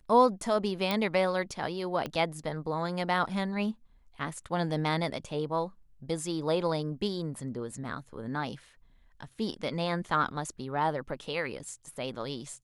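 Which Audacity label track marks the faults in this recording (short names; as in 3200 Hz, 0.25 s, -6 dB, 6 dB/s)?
0.910000	0.910000	pop
2.060000	2.060000	pop -20 dBFS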